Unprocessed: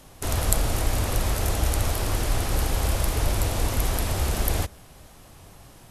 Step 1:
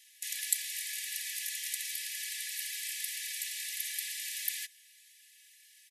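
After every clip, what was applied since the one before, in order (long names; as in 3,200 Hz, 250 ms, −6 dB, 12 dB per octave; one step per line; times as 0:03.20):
Chebyshev high-pass filter 1,700 Hz, order 10
comb filter 3.5 ms, depth 95%
level −6.5 dB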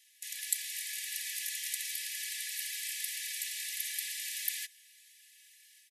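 automatic gain control gain up to 4.5 dB
level −4.5 dB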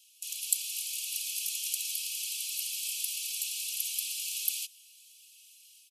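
Butterworth high-pass 2,500 Hz 96 dB per octave
notch filter 3,700 Hz, Q 22
level +4 dB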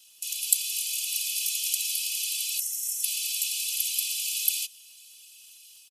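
gain on a spectral selection 0:02.60–0:03.04, 2,100–5,400 Hz −19 dB
comb filter 2 ms, depth 55%
surface crackle 120 per second −60 dBFS
level +4.5 dB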